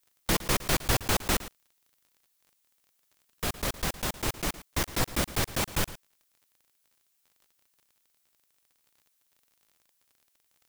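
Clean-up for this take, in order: de-click; interpolate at 1/4.83, 7.4 ms; expander -65 dBFS, range -21 dB; inverse comb 0.112 s -16 dB

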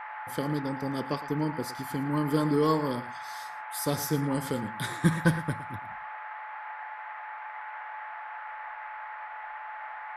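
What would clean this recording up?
clip repair -12 dBFS; notch 860 Hz, Q 30; noise print and reduce 30 dB; inverse comb 0.112 s -15.5 dB

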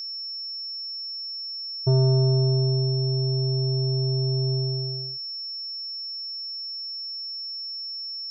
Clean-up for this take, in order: notch 5400 Hz, Q 30

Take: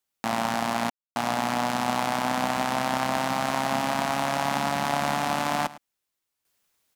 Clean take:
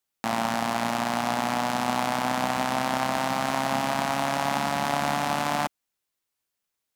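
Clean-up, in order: room tone fill 0.9–1.16; inverse comb 0.107 s -18 dB; gain correction -10 dB, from 6.45

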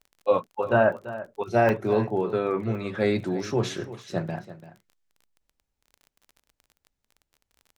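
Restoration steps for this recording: de-click; interpolate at 1.34/1.69/2.75/4.89, 1.1 ms; inverse comb 0.338 s -15 dB

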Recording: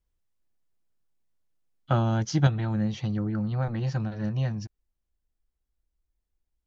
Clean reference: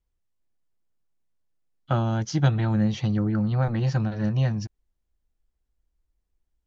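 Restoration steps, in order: gain 0 dB, from 2.47 s +4.5 dB

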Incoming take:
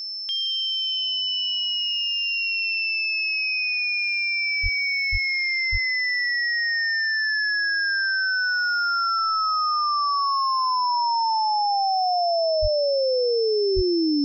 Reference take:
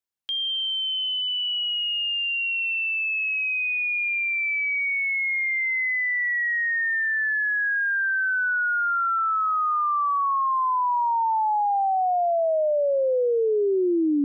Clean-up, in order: notch 5300 Hz, Q 30; de-plosive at 4.62/5.11/5.71/12.61/13.75

